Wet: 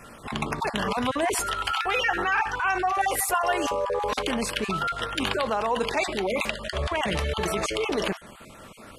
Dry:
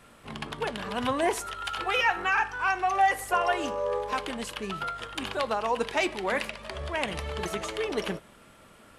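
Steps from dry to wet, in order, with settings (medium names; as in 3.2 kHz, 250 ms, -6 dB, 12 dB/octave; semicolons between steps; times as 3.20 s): random holes in the spectrogram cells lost 23%; in parallel at +1 dB: compressor with a negative ratio -35 dBFS, ratio -1; 2.94–3.85 s: on the sum: treble shelf 9.2 kHz +9 dB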